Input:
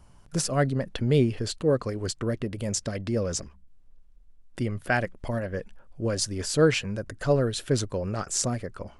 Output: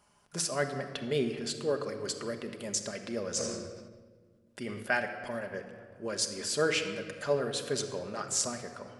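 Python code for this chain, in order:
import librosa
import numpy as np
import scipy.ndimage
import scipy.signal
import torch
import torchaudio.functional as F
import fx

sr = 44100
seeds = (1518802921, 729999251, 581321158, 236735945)

y = fx.highpass(x, sr, hz=640.0, slope=6)
y = fx.room_shoebox(y, sr, seeds[0], volume_m3=3600.0, walls='mixed', distance_m=1.3)
y = fx.sustainer(y, sr, db_per_s=39.0, at=(3.29, 4.83))
y = F.gain(torch.from_numpy(y), -3.0).numpy()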